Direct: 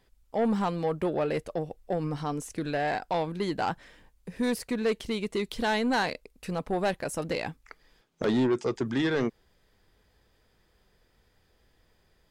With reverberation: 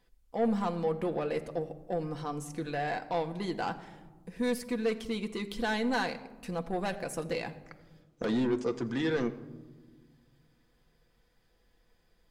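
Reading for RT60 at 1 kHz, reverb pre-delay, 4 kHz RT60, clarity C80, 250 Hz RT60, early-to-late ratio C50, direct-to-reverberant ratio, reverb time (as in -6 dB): 1.2 s, 4 ms, 0.60 s, 15.5 dB, 2.4 s, 14.5 dB, 5.5 dB, 1.4 s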